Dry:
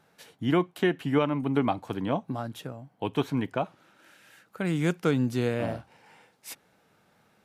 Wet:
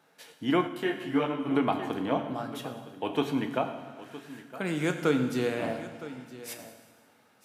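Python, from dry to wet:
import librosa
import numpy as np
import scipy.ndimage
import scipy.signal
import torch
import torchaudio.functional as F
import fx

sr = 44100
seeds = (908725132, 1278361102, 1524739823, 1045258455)

y = scipy.signal.sosfilt(scipy.signal.bessel(2, 250.0, 'highpass', norm='mag', fs=sr, output='sos'), x)
y = y + 10.0 ** (-16.0 / 20.0) * np.pad(y, (int(964 * sr / 1000.0), 0))[:len(y)]
y = fx.rev_fdn(y, sr, rt60_s=1.5, lf_ratio=1.3, hf_ratio=0.95, size_ms=65.0, drr_db=5.0)
y = fx.detune_double(y, sr, cents=27, at=(0.67, 1.49), fade=0.02)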